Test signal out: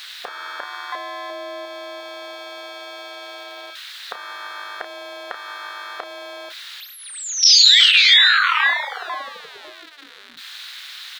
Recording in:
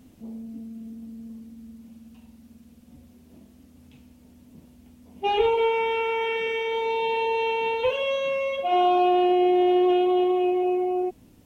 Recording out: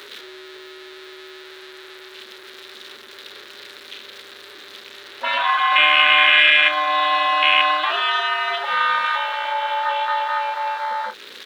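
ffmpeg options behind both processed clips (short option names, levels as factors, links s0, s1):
-filter_complex "[0:a]aeval=exprs='val(0)+0.5*0.0224*sgn(val(0))':c=same,acrossover=split=5000[s0][s1];[s1]acompressor=threshold=0.00224:ratio=4:attack=1:release=60[s2];[s0][s2]amix=inputs=2:normalize=0,afwtdn=0.0398,afftfilt=real='re*lt(hypot(re,im),0.631)':imag='im*lt(hypot(re,im),0.631)':win_size=1024:overlap=0.75,equalizer=f=3800:t=o:w=0.57:g=14.5,asplit=2[s3][s4];[s4]acompressor=threshold=0.0158:ratio=6,volume=1.19[s5];[s3][s5]amix=inputs=2:normalize=0,aeval=exprs='val(0)*sin(2*PI*150*n/s)':c=same,highpass=f=1600:t=q:w=2.2,asplit=2[s6][s7];[s7]adelay=32,volume=0.316[s8];[s6][s8]amix=inputs=2:normalize=0,alimiter=level_in=5.96:limit=0.891:release=50:level=0:latency=1,volume=0.891"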